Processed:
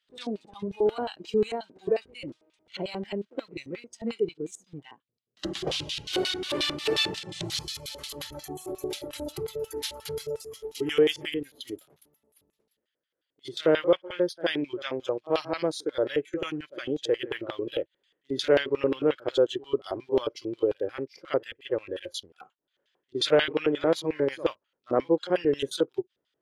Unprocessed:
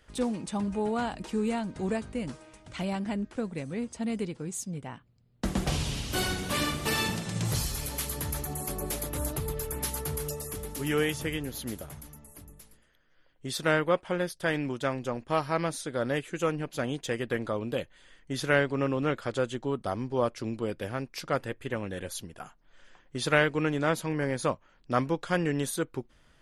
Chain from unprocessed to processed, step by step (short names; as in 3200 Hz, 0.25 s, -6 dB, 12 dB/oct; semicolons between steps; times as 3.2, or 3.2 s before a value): HPF 41 Hz 12 dB/oct; reverse echo 65 ms -15 dB; in parallel at -5 dB: sample gate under -38 dBFS; on the sum: LFO band-pass square 5.6 Hz 420–3600 Hz; spectral noise reduction 13 dB; gain +6.5 dB